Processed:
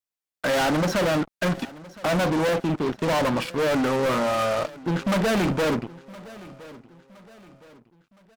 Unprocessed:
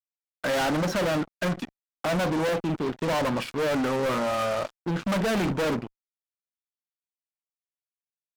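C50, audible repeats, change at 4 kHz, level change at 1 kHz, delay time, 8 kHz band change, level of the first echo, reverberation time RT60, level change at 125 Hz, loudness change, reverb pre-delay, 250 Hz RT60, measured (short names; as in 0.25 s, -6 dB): none, 2, +3.0 dB, +3.0 dB, 1.016 s, +3.0 dB, -20.0 dB, none, +3.0 dB, +3.0 dB, none, none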